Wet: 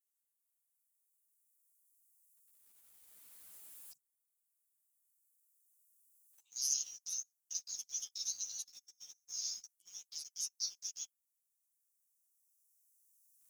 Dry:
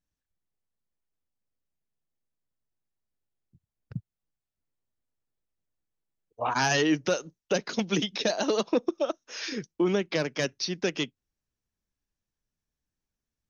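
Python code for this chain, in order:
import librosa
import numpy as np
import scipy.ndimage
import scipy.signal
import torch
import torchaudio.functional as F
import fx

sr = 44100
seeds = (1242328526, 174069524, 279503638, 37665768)

p1 = fx.recorder_agc(x, sr, target_db=-21.5, rise_db_per_s=7.6, max_gain_db=30)
p2 = scipy.signal.sosfilt(scipy.signal.cheby2(4, 80, 1600.0, 'highpass', fs=sr, output='sos'), p1)
p3 = fx.quant_companded(p2, sr, bits=6)
p4 = p2 + (p3 * 10.0 ** (-3.0 / 20.0))
p5 = fx.ensemble(p4, sr)
y = p5 * 10.0 ** (13.5 / 20.0)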